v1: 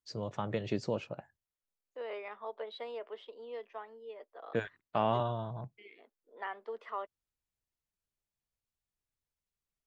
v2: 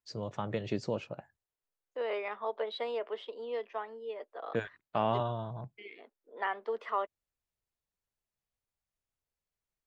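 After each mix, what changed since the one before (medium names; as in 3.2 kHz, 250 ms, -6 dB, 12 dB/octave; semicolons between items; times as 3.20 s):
second voice +6.5 dB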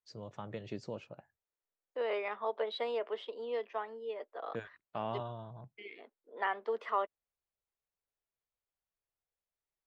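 first voice -8.0 dB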